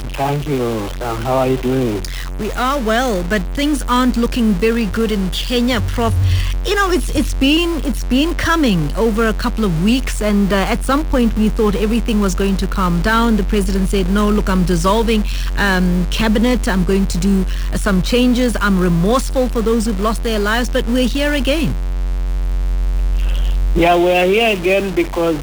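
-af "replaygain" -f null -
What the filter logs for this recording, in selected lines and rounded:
track_gain = -2.6 dB
track_peak = 0.501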